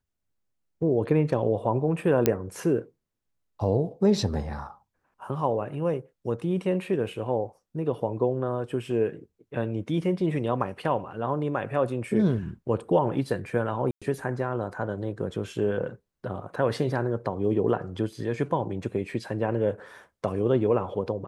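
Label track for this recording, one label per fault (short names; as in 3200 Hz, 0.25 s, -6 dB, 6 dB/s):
2.260000	2.260000	pop -6 dBFS
13.910000	14.020000	gap 0.106 s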